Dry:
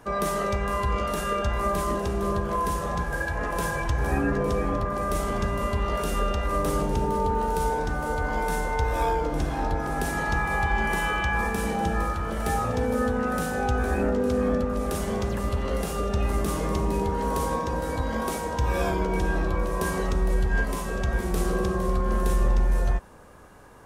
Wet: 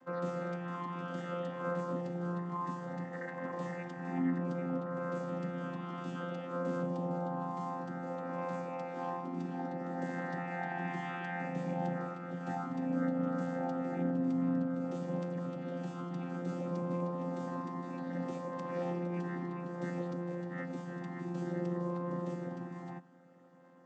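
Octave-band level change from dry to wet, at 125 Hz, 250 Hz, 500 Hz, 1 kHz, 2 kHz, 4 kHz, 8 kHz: -10.5 dB, -6.0 dB, -11.0 dB, -13.0 dB, -15.0 dB, -18.5 dB, under -25 dB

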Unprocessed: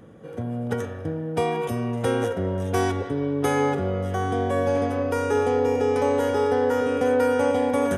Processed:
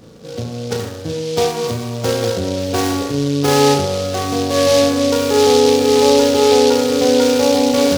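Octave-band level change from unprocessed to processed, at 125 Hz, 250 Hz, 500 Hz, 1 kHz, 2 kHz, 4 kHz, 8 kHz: +5.0, +8.5, +8.5, +6.5, +5.5, +20.5, +18.5 dB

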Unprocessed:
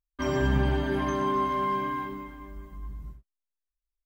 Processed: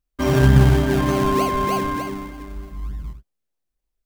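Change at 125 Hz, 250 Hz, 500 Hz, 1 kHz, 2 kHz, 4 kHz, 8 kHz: +14.0 dB, +9.5 dB, +8.0 dB, +5.0 dB, +6.5 dB, +9.0 dB, n/a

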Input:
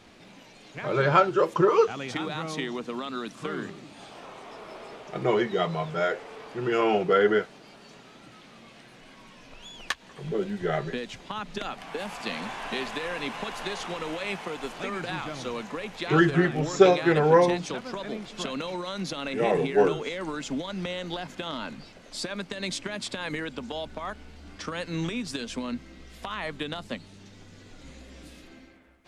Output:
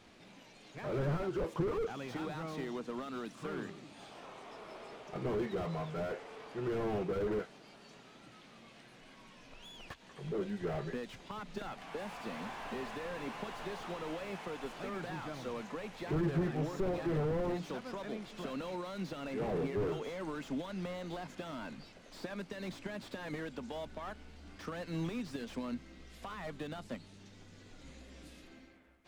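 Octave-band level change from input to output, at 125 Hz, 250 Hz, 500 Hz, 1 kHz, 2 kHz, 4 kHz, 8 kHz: -6.5, -9.0, -12.0, -14.0, -14.5, -14.5, -14.0 dB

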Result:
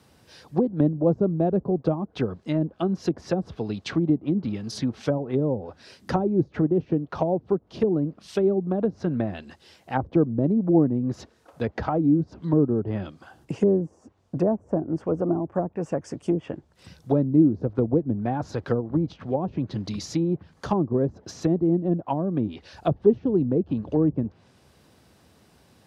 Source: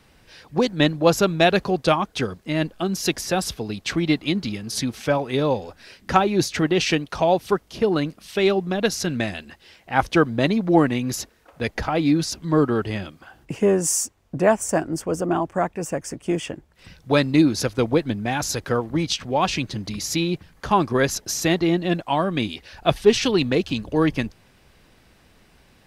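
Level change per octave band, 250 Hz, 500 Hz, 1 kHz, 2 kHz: -0.5, -3.5, -9.0, -16.0 dB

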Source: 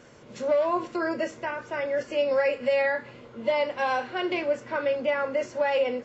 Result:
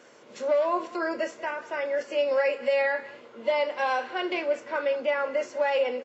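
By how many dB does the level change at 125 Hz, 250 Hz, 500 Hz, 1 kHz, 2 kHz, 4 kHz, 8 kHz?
under -10 dB, -3.5 dB, -0.5 dB, 0.0 dB, 0.0 dB, 0.0 dB, n/a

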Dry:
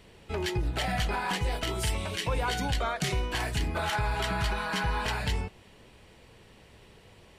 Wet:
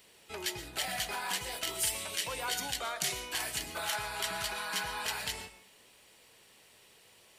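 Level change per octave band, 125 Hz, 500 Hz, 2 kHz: -19.5, -8.5, -4.0 dB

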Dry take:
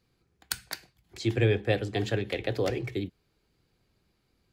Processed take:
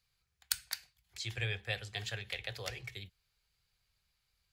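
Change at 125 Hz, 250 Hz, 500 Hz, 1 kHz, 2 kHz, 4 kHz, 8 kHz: -12.5, -24.5, -19.0, -11.5, -4.5, -2.0, -0.5 dB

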